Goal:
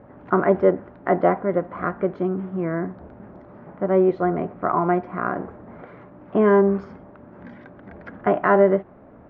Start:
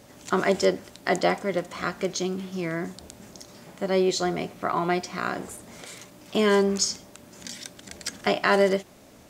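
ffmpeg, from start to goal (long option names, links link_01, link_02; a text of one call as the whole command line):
ffmpeg -i in.wav -af "lowpass=frequency=1500:width=0.5412,lowpass=frequency=1500:width=1.3066,volume=5dB" out.wav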